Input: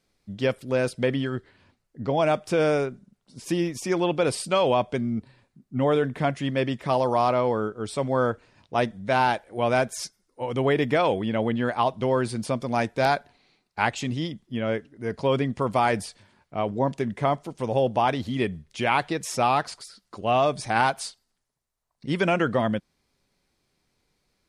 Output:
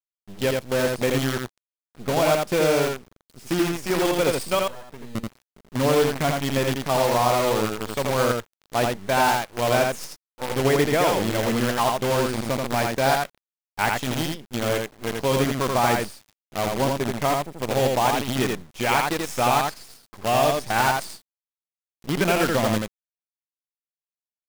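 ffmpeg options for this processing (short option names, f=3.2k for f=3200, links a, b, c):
-filter_complex "[0:a]asettb=1/sr,asplit=3[a][b][c];[a]atrim=end=4.594[d];[b]atrim=start=4.59:end=5.15,asetpts=PTS-STARTPTS,afade=t=in:d=0.004:c=qsin,afade=t=out:st=0.556:d=0.004:c=qsin,acompressor=threshold=-34dB:ratio=10[e];[c]atrim=start=5.146[f];[d][e]acrossfade=d=0.004:c1=hsin:c2=qsin[g];[g][f]acrossfade=d=0.004:c1=qsin:c2=hsin,acrusher=bits=5:dc=4:mix=0:aa=0.000001,aecho=1:1:83:0.708"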